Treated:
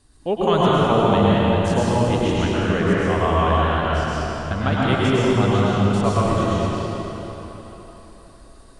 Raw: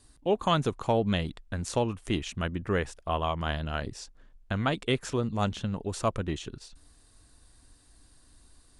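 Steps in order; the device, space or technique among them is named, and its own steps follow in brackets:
swimming-pool hall (convolution reverb RT60 4.1 s, pre-delay 97 ms, DRR −8 dB; high-shelf EQ 4,000 Hz −6.5 dB)
level +3 dB

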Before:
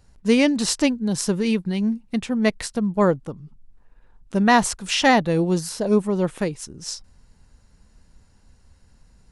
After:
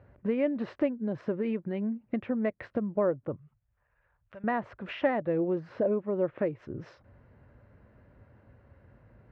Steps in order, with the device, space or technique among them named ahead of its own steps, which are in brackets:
bass amplifier (downward compressor 5 to 1, threshold −31 dBFS, peak gain reduction 17.5 dB; loudspeaker in its box 61–2,100 Hz, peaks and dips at 70 Hz −8 dB, 110 Hz +6 dB, 180 Hz −6 dB, 350 Hz +4 dB, 580 Hz +9 dB, 860 Hz −4 dB)
0:03.36–0:04.44: guitar amp tone stack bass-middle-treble 10-0-10
level +2.5 dB

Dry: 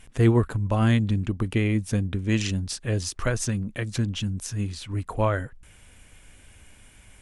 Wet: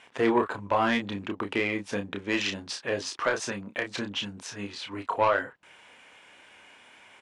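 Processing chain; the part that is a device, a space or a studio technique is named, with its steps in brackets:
intercom (band-pass filter 440–3,900 Hz; parametric band 940 Hz +5 dB 0.34 octaves; soft clipping −18.5 dBFS, distortion −16 dB; double-tracking delay 30 ms −6 dB)
level +4 dB

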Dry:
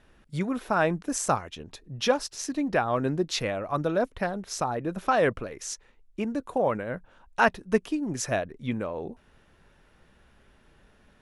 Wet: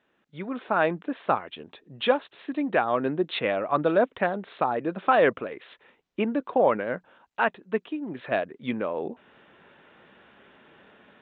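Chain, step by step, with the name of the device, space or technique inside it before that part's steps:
Bluetooth headset (high-pass filter 230 Hz 12 dB per octave; automatic gain control gain up to 16 dB; downsampling to 8,000 Hz; level −7.5 dB; SBC 64 kbit/s 16,000 Hz)

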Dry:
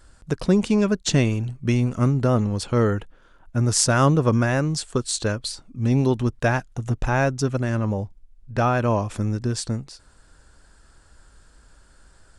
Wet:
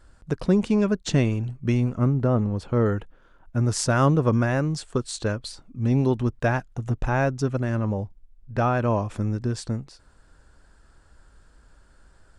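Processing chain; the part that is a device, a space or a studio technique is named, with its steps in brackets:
0:01.91–0:02.86: high-shelf EQ 2,500 Hz −9.5 dB
behind a face mask (high-shelf EQ 3,300 Hz −8 dB)
level −1.5 dB

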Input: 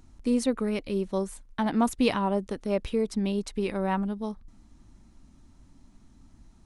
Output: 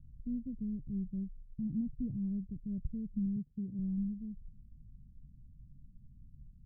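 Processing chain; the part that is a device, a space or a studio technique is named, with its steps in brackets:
0:03.36–0:03.79: high-pass filter 110 Hz 12 dB per octave
the neighbour's flat through the wall (low-pass filter 170 Hz 24 dB per octave; parametric band 140 Hz +7.5 dB 0.4 octaves)

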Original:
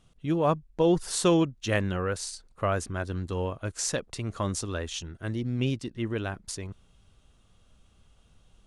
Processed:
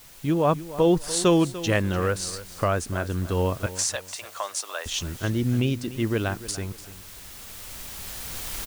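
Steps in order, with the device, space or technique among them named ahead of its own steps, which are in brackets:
cheap recorder with automatic gain (white noise bed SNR 23 dB; camcorder AGC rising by 7.2 dB per second)
0:03.66–0:04.86: Chebyshev high-pass filter 670 Hz, order 3
repeating echo 294 ms, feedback 28%, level −15.5 dB
level +3 dB

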